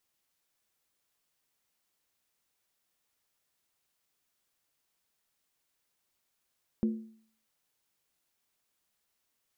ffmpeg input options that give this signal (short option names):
-f lavfi -i "aevalsrc='0.075*pow(10,-3*t/0.55)*sin(2*PI*221*t)+0.0237*pow(10,-3*t/0.436)*sin(2*PI*352.3*t)+0.0075*pow(10,-3*t/0.376)*sin(2*PI*472.1*t)+0.00237*pow(10,-3*t/0.363)*sin(2*PI*507.4*t)+0.00075*pow(10,-3*t/0.338)*sin(2*PI*586.3*t)':d=0.63:s=44100"